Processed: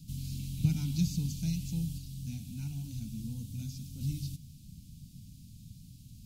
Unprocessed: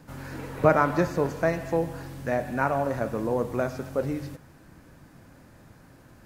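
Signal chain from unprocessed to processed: inverse Chebyshev band-stop 360–1900 Hz, stop band 40 dB; dynamic EQ 140 Hz, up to -3 dB, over -40 dBFS, Q 0.91; 1.98–4.01 flange 1 Hz, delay 2.2 ms, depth 9.7 ms, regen -48%; gain +4 dB

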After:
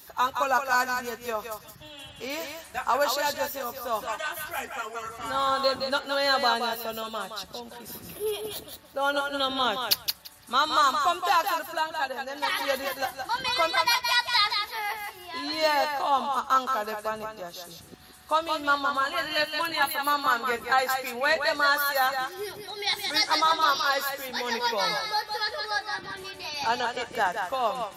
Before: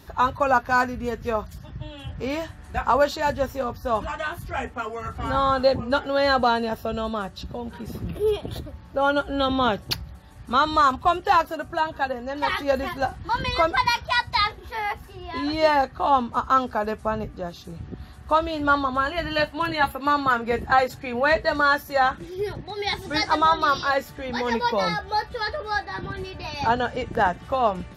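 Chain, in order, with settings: RIAA curve recording; notches 60/120 Hz; thinning echo 0.17 s, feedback 16%, high-pass 420 Hz, level -5 dB; gain -4.5 dB

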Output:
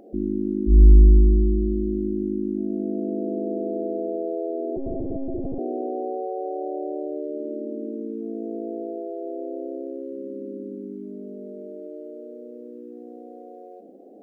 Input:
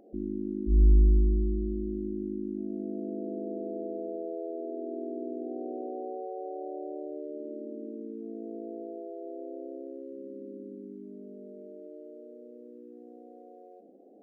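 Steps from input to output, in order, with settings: 4.76–5.59 monotone LPC vocoder at 8 kHz 270 Hz; gain +8.5 dB

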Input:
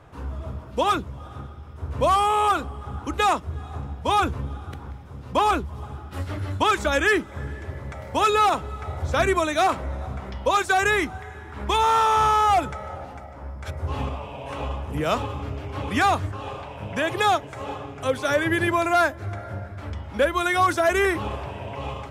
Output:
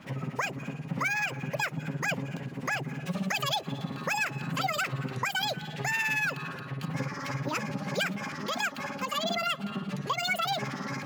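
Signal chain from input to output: HPF 130 Hz 6 dB/oct; low shelf 170 Hz +10 dB; compressor 2:1, threshold -32 dBFS, peak gain reduction 9.5 dB; harmonic tremolo 8.7 Hz, crossover 690 Hz; speed mistake 7.5 ips tape played at 15 ips; gain +2 dB

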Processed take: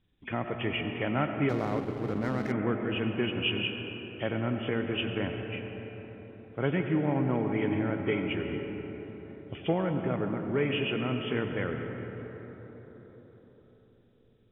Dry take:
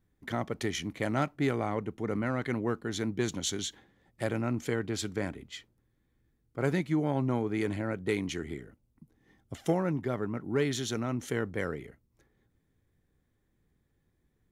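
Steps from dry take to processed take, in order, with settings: nonlinear frequency compression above 2200 Hz 4:1; digital reverb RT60 4.8 s, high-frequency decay 0.35×, pre-delay 55 ms, DRR 4.5 dB; 1.49–2.52 backlash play -34 dBFS

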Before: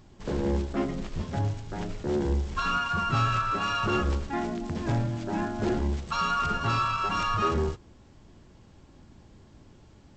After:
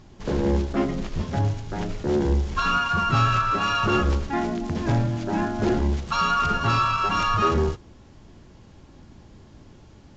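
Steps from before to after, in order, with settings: gain +5 dB; AAC 64 kbps 16000 Hz

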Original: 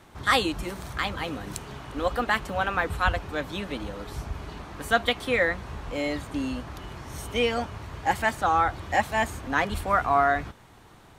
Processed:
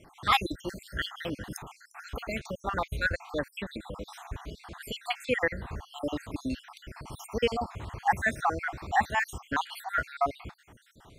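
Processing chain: random spectral dropouts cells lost 62%

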